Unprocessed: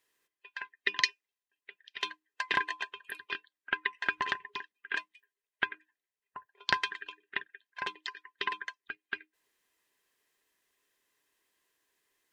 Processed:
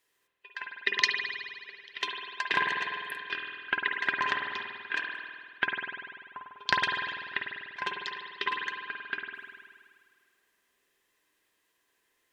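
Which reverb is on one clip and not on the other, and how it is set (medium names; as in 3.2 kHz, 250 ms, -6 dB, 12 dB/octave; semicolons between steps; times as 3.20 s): spring tank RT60 1.9 s, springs 49 ms, chirp 25 ms, DRR 0.5 dB; trim +1.5 dB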